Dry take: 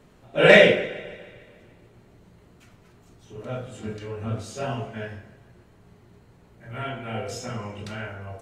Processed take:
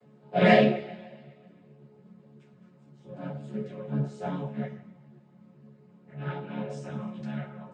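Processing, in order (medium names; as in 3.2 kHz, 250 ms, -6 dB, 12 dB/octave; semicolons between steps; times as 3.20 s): vocoder on a held chord major triad, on C3; speed mistake 44.1 kHz file played as 48 kHz; three-phase chorus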